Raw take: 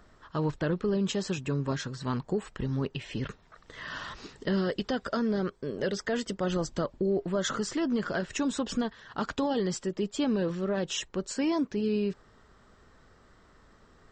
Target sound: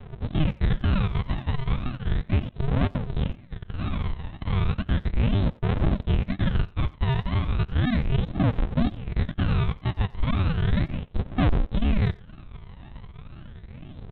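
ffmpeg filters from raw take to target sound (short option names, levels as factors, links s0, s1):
-filter_complex "[0:a]aeval=exprs='if(lt(val(0),0),0.708*val(0),val(0))':c=same,asplit=2[s0][s1];[s1]acompressor=threshold=0.00316:ratio=6,volume=0.944[s2];[s0][s2]amix=inputs=2:normalize=0,asplit=2[s3][s4];[s4]highpass=f=720:p=1,volume=28.2,asoftclip=type=tanh:threshold=0.282[s5];[s3][s5]amix=inputs=2:normalize=0,lowpass=f=1700:p=1,volume=0.501,aresample=8000,acrusher=samples=23:mix=1:aa=0.000001:lfo=1:lforange=13.8:lforate=2,aresample=44100,aphaser=in_gain=1:out_gain=1:delay=1.1:decay=0.52:speed=0.35:type=triangular,asplit=2[s6][s7];[s7]adelay=90,highpass=300,lowpass=3400,asoftclip=type=hard:threshold=0.141,volume=0.1[s8];[s6][s8]amix=inputs=2:normalize=0,volume=0.473"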